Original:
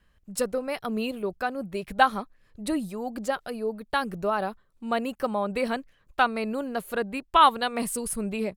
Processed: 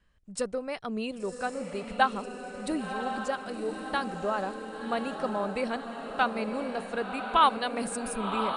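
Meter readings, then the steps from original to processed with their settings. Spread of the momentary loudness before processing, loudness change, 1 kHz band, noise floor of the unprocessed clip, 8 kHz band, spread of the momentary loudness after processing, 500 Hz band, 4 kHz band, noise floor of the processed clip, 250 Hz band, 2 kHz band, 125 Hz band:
11 LU, -3.0 dB, -3.0 dB, -64 dBFS, -5.0 dB, 9 LU, -3.0 dB, -3.0 dB, -43 dBFS, -3.0 dB, -3.0 dB, -3.0 dB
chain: brick-wall FIR low-pass 10 kHz; on a send: echo that smears into a reverb 1070 ms, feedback 57%, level -6.5 dB; on the sum: trim -4 dB

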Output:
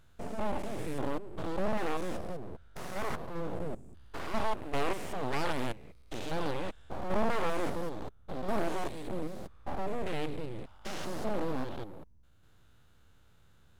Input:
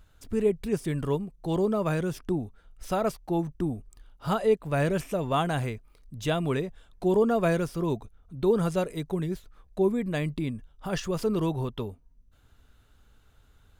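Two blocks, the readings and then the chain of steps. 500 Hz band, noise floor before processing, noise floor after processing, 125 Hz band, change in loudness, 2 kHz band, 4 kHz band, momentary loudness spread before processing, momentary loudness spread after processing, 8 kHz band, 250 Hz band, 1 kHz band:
-9.0 dB, -60 dBFS, -60 dBFS, -12.0 dB, -8.5 dB, -3.0 dB, -3.5 dB, 11 LU, 11 LU, -5.0 dB, -9.5 dB, -3.0 dB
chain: spectrogram pixelated in time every 200 ms; full-wave rectifier; loudspeaker Doppler distortion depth 0.39 ms

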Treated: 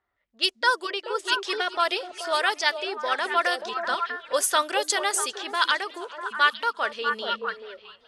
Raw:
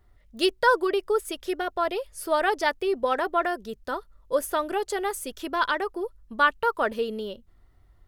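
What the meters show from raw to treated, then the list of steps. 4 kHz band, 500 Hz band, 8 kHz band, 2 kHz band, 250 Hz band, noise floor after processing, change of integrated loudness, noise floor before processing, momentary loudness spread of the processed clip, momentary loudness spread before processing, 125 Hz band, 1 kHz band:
+8.5 dB, -4.0 dB, +9.5 dB, +3.5 dB, -8.0 dB, -63 dBFS, +1.5 dB, -59 dBFS, 7 LU, 12 LU, no reading, +1.0 dB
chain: frequency weighting ITU-R 468; repeats whose band climbs or falls 215 ms, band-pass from 190 Hz, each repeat 1.4 oct, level -1 dB; level rider gain up to 10 dB; level-controlled noise filter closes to 1.6 kHz, open at -13 dBFS; modulated delay 406 ms, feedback 38%, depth 135 cents, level -23 dB; trim -5.5 dB

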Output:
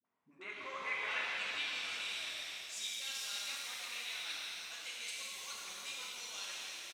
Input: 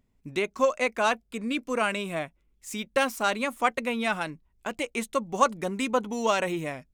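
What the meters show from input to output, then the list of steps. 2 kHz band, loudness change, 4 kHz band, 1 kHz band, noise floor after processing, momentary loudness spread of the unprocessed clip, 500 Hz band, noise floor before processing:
-9.5 dB, -11.5 dB, -2.0 dB, -20.5 dB, -65 dBFS, 10 LU, -27.5 dB, -69 dBFS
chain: fade out at the end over 1.38 s; high-pass 130 Hz; tilt shelf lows -4.5 dB, about 1.5 kHz; peak limiter -18 dBFS, peak gain reduction 10.5 dB; reverse; compression, threshold -36 dBFS, peak gain reduction 12 dB; reverse; phase dispersion highs, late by 54 ms, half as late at 410 Hz; band-pass sweep 1 kHz -> 4.5 kHz, 0.17–1.94 s; on a send: frequency-shifting echo 169 ms, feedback 50%, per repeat -100 Hz, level -9.5 dB; on the sum: pitch-shifted reverb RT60 3.2 s, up +7 st, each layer -8 dB, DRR -5.5 dB; trim +2 dB

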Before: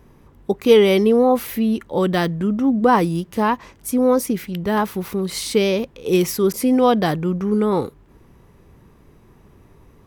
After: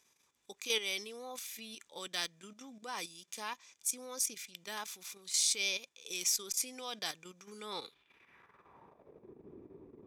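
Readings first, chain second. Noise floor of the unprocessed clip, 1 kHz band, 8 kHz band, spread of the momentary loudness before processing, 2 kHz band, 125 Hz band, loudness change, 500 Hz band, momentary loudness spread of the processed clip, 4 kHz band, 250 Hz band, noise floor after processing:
-51 dBFS, -24.5 dB, -1.5 dB, 9 LU, -12.5 dB, under -35 dB, -17.5 dB, -29.5 dB, 21 LU, -6.5 dB, -35.0 dB, -74 dBFS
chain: level held to a coarse grid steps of 10 dB; small resonant body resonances 2.4/3.5 kHz, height 11 dB, ringing for 25 ms; band-pass sweep 6.7 kHz -> 350 Hz, 7.58–9.36 s; Chebyshev shaper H 2 -14 dB, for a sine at -6 dBFS; trim +5.5 dB

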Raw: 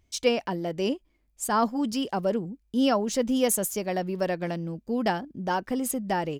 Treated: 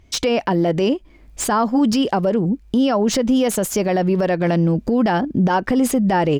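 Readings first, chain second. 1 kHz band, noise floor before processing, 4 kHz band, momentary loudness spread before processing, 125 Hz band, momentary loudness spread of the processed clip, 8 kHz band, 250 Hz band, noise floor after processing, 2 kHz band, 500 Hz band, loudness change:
+7.5 dB, -70 dBFS, +7.0 dB, 8 LU, +14.0 dB, 3 LU, +5.0 dB, +10.5 dB, -49 dBFS, +7.5 dB, +8.0 dB, +9.0 dB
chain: recorder AGC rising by 25 dB/s; low-pass 3.4 kHz 6 dB/octave; compression, threshold -26 dBFS, peak gain reduction 9 dB; loudness maximiser +23.5 dB; slew-rate limiter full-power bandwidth 1.6 kHz; trim -8.5 dB

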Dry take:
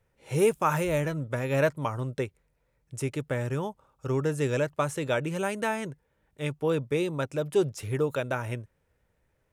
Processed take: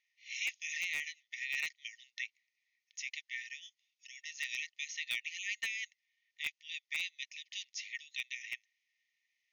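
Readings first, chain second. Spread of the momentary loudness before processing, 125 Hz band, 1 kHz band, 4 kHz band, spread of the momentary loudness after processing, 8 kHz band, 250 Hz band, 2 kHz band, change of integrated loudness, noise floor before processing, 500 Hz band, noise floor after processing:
10 LU, under -40 dB, under -30 dB, +2.0 dB, 11 LU, -3.5 dB, under -40 dB, -2.0 dB, -10.5 dB, -73 dBFS, under -40 dB, under -85 dBFS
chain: brick-wall FIR band-pass 1.8–6.8 kHz; in parallel at -9.5 dB: integer overflow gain 27 dB

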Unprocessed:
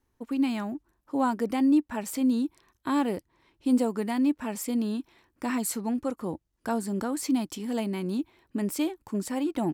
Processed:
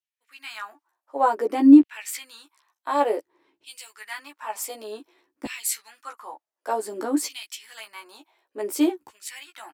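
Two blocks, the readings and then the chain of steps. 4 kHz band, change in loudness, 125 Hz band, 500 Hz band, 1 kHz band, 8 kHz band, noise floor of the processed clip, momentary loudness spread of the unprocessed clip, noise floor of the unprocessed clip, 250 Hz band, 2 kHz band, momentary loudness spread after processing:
+4.0 dB, +6.5 dB, under -15 dB, +3.5 dB, +6.0 dB, +4.5 dB, under -85 dBFS, 10 LU, -75 dBFS, +3.0 dB, +3.5 dB, 22 LU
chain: peaking EQ 200 Hz -12 dB 0.53 oct; LFO high-pass saw down 0.55 Hz 230–3000 Hz; doubling 14 ms -3 dB; three bands expanded up and down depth 40%

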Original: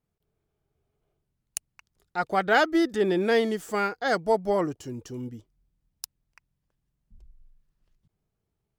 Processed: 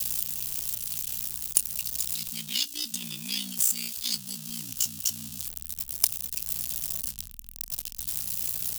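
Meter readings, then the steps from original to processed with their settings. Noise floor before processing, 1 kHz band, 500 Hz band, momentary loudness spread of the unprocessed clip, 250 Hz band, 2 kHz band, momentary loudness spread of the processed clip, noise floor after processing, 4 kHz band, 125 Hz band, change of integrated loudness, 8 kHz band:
-81 dBFS, -25.5 dB, -31.5 dB, 18 LU, -15.5 dB, -15.0 dB, 9 LU, -45 dBFS, +7.5 dB, -5.5 dB, -3.0 dB, +16.5 dB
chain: jump at every zero crossing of -34 dBFS; treble shelf 2 kHz +8.5 dB; ring modulator 30 Hz; Chebyshev band-stop 240–2600 Hz, order 4; doubling 26 ms -14 dB; in parallel at +1 dB: gain riding within 4 dB 0.5 s; on the sum: pre-emphasis filter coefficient 0.8; waveshaping leveller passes 1; hard clipper -7.5 dBFS, distortion -15 dB

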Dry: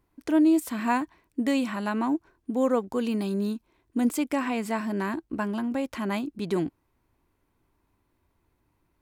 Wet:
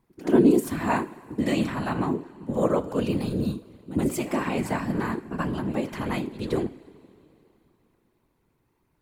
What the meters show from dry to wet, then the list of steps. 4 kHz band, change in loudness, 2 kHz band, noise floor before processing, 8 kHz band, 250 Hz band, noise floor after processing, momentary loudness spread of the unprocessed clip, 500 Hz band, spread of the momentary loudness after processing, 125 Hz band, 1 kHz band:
+1.0 dB, +1.5 dB, +0.5 dB, -73 dBFS, +1.0 dB, +0.5 dB, -71 dBFS, 8 LU, +3.0 dB, 10 LU, +8.5 dB, +0.5 dB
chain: pre-echo 78 ms -13 dB; two-slope reverb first 0.39 s, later 3.3 s, from -18 dB, DRR 9.5 dB; whisper effect

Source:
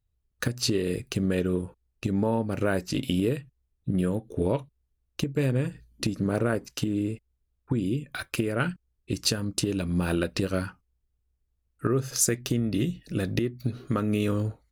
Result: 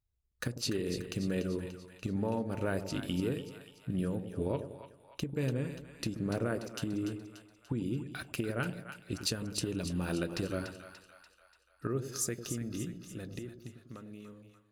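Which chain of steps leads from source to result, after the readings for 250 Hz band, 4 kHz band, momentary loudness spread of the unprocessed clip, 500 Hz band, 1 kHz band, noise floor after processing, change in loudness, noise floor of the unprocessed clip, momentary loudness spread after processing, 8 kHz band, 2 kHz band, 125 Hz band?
-8.0 dB, -7.5 dB, 7 LU, -8.0 dB, -8.0 dB, -68 dBFS, -8.0 dB, -76 dBFS, 14 LU, -9.0 dB, -7.5 dB, -8.5 dB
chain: fade out at the end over 3.38 s; vibrato 0.85 Hz 10 cents; two-band feedback delay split 730 Hz, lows 100 ms, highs 291 ms, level -9 dB; trim -8 dB

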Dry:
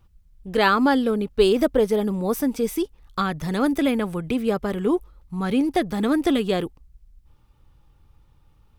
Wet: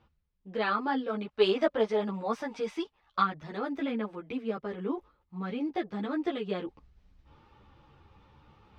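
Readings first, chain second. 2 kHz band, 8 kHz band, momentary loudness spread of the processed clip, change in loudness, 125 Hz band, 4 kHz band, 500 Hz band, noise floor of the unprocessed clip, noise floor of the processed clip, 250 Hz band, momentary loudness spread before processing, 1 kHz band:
-9.5 dB, under -20 dB, 10 LU, -9.5 dB, -12.0 dB, -8.5 dB, -8.5 dB, -58 dBFS, -75 dBFS, -12.0 dB, 8 LU, -7.0 dB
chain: high-pass 310 Hz 6 dB/octave; time-frequency box 1.08–3.24 s, 570–11000 Hz +8 dB; reverse; upward compressor, threshold -33 dBFS; reverse; distance through air 210 m; three-phase chorus; trim -5 dB

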